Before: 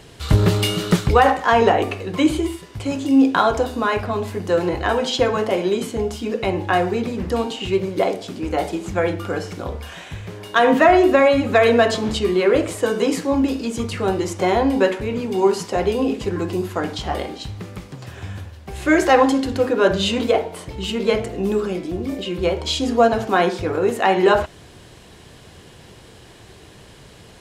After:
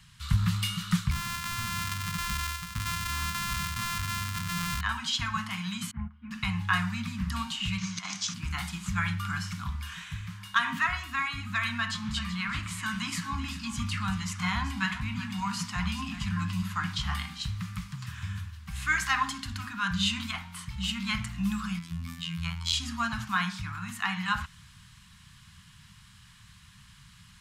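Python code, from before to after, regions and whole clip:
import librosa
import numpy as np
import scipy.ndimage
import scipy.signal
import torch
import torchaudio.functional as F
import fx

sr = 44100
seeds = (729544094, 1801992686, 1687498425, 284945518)

y = fx.chain(x, sr, fx.sample_sort(block=128),
    fx.clip_hard(threshold_db=-16.5),
    fx.env_flatten(amount_pct=50), at=(1.11, 4.81))
y = fx.chain(y, sr, fx.lowpass(hz=1800.0, slope=24),
    fx.upward_expand(threshold_db=-31.0, expansion=2.5), at=(5.91, 6.31))
y = fx.chain(y, sr, fx.lowpass_res(hz=6200.0, q=5.6),
    fx.low_shelf(hz=180.0, db=-11.5),
    fx.over_compress(threshold_db=-22.0, ratio=-0.5), at=(7.78, 8.34))
y = fx.chain(y, sr, fx.high_shelf(hz=7200.0, db=-6.5),
    fx.echo_single(ms=382, db=-13.0), at=(11.78, 17.1))
y = fx.chain(y, sr, fx.high_shelf(hz=9700.0, db=4.5),
    fx.robotise(hz=83.8), at=(21.79, 22.73))
y = scipy.signal.sosfilt(scipy.signal.ellip(3, 1.0, 70, [190.0, 1100.0], 'bandstop', fs=sr, output='sos'), y)
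y = fx.rider(y, sr, range_db=4, speed_s=2.0)
y = y * 10.0 ** (-5.0 / 20.0)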